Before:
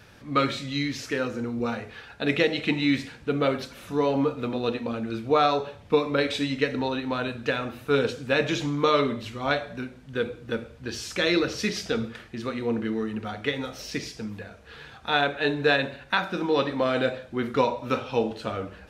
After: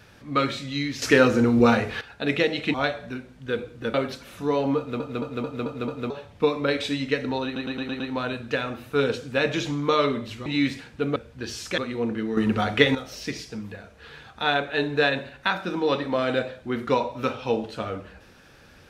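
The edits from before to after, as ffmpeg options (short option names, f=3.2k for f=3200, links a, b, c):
-filter_complex "[0:a]asplit=21[a][b][c][d][e][f][g][h][i][j][k][l][m][n][o][p][q][r][s][t][u];[a]atrim=end=1.022[v];[b]atrim=start=1.018:end=2.012,asetpts=PTS-STARTPTS,volume=11dB[w];[c]atrim=start=2.008:end=2.742[x];[d]atrim=start=9.408:end=10.612[y];[e]atrim=start=3.438:end=4.502[z];[f]atrim=start=4.278:end=4.502[aa];[g]atrim=start=4.278:end=4.502[ab];[h]atrim=start=4.278:end=4.502[ac];[i]atrim=start=4.278:end=4.502[ad];[j]atrim=start=4.278:end=4.502[ae];[k]atrim=start=5.598:end=7.062[af];[l]atrim=start=6.948:end=7.062[ag];[m]atrim=start=6.948:end=7.062[ah];[n]atrim=start=6.948:end=7.062[ai];[o]atrim=start=6.948:end=7.062[aj];[p]atrim=start=6.948:end=9.412[ak];[q]atrim=start=2.738:end=3.442[al];[r]atrim=start=10.608:end=11.232[am];[s]atrim=start=12.448:end=13.042[an];[t]atrim=start=13.038:end=13.622,asetpts=PTS-STARTPTS,volume=9.5dB[ao];[u]atrim=start=13.618[ap];[v][w]acrossfade=d=0.004:c1=hsin:c2=hsin[aq];[aq][x]acrossfade=d=0.004:c1=hsin:c2=hsin[ar];[ar][y]acrossfade=d=0.004:c1=hsin:c2=hsin[as];[as][z]acrossfade=d=0.004:c1=hsin:c2=hsin[at];[at][aa]acrossfade=d=0.004:c1=hsin:c2=hsin[au];[au][ab]acrossfade=d=0.004:c1=hsin:c2=hsin[av];[av][ac]acrossfade=d=0.004:c1=hsin:c2=hsin[aw];[aw][ad]acrossfade=d=0.004:c1=hsin:c2=hsin[ax];[ax][ae]acrossfade=d=0.004:c1=hsin:c2=hsin[ay];[ay][af]acrossfade=d=0.004:c1=hsin:c2=hsin[az];[az][ag]acrossfade=d=0.004:c1=hsin:c2=hsin[ba];[ba][ah]acrossfade=d=0.004:c1=hsin:c2=hsin[bb];[bb][ai]acrossfade=d=0.004:c1=hsin:c2=hsin[bc];[bc][aj]acrossfade=d=0.004:c1=hsin:c2=hsin[bd];[bd][ak]acrossfade=d=0.004:c1=hsin:c2=hsin[be];[be][al]acrossfade=d=0.004:c1=hsin:c2=hsin[bf];[bf][am]acrossfade=d=0.004:c1=hsin:c2=hsin[bg];[bg][an]acrossfade=d=0.004:c1=hsin:c2=hsin[bh];[bh][ao]acrossfade=d=0.004:c1=hsin:c2=hsin[bi];[bi][ap]acrossfade=d=0.004:c1=hsin:c2=hsin"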